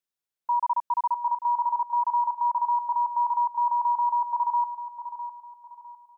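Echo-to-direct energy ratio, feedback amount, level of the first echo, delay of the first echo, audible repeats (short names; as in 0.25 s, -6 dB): -10.5 dB, 33%, -11.0 dB, 0.655 s, 3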